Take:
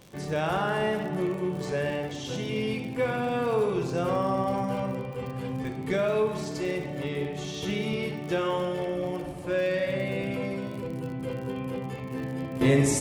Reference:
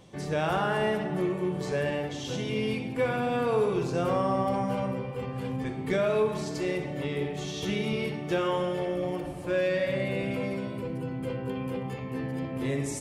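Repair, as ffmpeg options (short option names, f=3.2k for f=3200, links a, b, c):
-af "adeclick=t=4,asetnsamples=n=441:p=0,asendcmd='12.61 volume volume -9dB',volume=0dB"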